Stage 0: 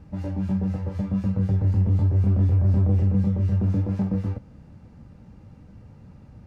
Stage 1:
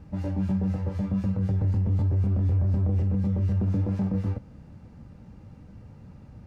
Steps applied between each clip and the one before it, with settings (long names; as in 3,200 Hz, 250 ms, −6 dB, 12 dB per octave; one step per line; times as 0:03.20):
brickwall limiter −18.5 dBFS, peak gain reduction 6.5 dB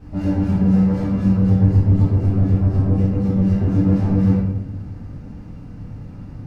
rectangular room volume 240 cubic metres, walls mixed, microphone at 3.3 metres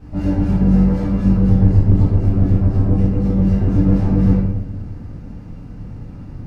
sub-octave generator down 2 octaves, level −4 dB
level +1 dB